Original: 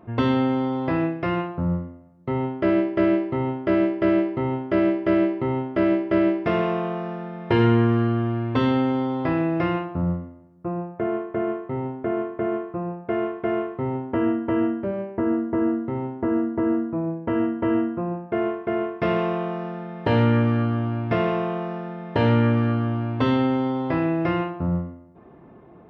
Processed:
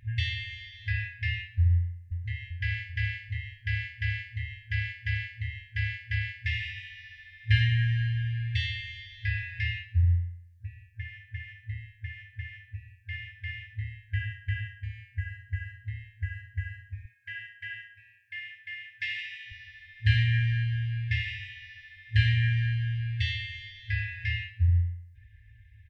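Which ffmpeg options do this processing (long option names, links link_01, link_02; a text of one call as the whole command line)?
ffmpeg -i in.wav -filter_complex "[0:a]asplit=2[link_01][link_02];[link_02]afade=type=in:start_time=1.72:duration=0.01,afade=type=out:start_time=2.47:duration=0.01,aecho=0:1:390|780|1170|1560|1950|2340|2730:0.334965|0.200979|0.120588|0.0723525|0.0434115|0.0260469|0.0156281[link_03];[link_01][link_03]amix=inputs=2:normalize=0,asettb=1/sr,asplit=3[link_04][link_05][link_06];[link_04]atrim=end=17.054[link_07];[link_05]atrim=start=17.05:end=19.52,asetpts=PTS-STARTPTS,afade=type=in:duration=0.004:curve=qsin,afade=type=out:start_time=2.466:duration=0.004:curve=qsin,highpass=410[link_08];[link_06]atrim=start=19.516[link_09];[link_07][link_08]acrossfade=duration=0.004:curve1=hsin:curve2=qsin[link_10];[link_10][link_09]acrossfade=duration=0.004:curve1=qsin:curve2=hsin,afftfilt=real='re*(1-between(b*sr/4096,110,1600))':imag='im*(1-between(b*sr/4096,110,1600))':win_size=4096:overlap=0.75,bass=frequency=250:gain=7,treble=frequency=4000:gain=0,volume=2.5dB" out.wav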